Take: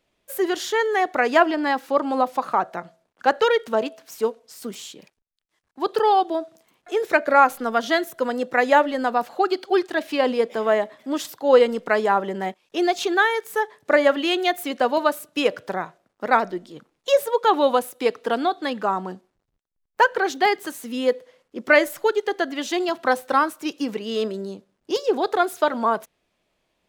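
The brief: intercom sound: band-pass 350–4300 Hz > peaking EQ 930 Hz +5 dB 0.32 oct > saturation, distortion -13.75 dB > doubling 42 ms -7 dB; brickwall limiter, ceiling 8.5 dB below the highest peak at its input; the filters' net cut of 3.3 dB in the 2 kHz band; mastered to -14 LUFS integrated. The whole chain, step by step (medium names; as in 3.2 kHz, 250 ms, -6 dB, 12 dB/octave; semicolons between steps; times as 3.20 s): peaking EQ 2 kHz -4.5 dB; peak limiter -12 dBFS; band-pass 350–4300 Hz; peaking EQ 930 Hz +5 dB 0.32 oct; saturation -17.5 dBFS; doubling 42 ms -7 dB; trim +13 dB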